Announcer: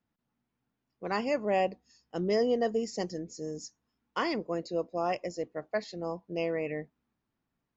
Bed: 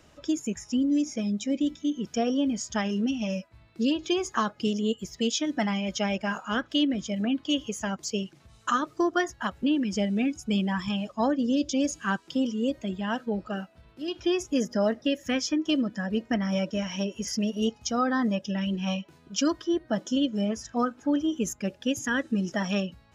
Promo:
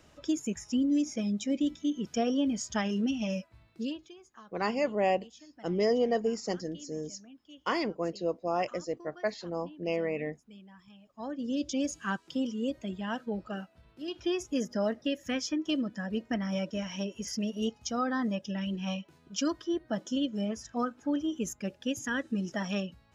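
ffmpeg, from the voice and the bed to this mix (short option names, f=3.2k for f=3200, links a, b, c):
-filter_complex "[0:a]adelay=3500,volume=0.5dB[a];[1:a]volume=18.5dB,afade=t=out:st=3.49:d=0.63:silence=0.0668344,afade=t=in:st=11.08:d=0.58:silence=0.0891251[b];[a][b]amix=inputs=2:normalize=0"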